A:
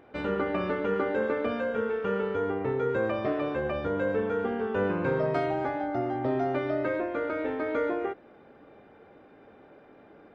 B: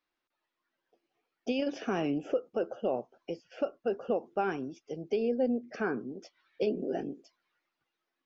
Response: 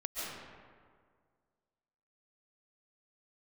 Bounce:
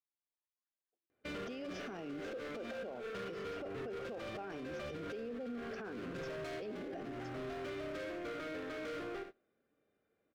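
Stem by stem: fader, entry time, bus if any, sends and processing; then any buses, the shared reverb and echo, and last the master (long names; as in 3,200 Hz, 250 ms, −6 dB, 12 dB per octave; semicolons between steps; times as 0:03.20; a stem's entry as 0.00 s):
−6.0 dB, 1.10 s, no send, echo send −10 dB, high-shelf EQ 3,700 Hz +11 dB; hard clipping −32.5 dBFS, distortion −7 dB; parametric band 870 Hz −11.5 dB 0.35 octaves
−1.5 dB, 0.00 s, no send, no echo send, no processing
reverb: not used
echo: repeating echo 74 ms, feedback 38%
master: noise gate −47 dBFS, range −21 dB; brickwall limiter −36.5 dBFS, peak gain reduction 16.5 dB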